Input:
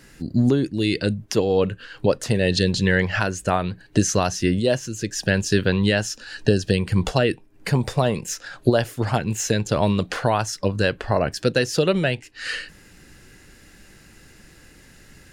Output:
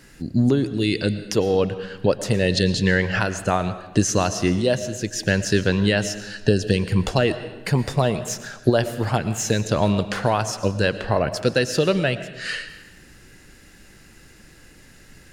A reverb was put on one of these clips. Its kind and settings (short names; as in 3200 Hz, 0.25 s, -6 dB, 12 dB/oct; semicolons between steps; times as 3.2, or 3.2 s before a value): digital reverb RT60 1.1 s, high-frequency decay 0.85×, pre-delay 75 ms, DRR 12 dB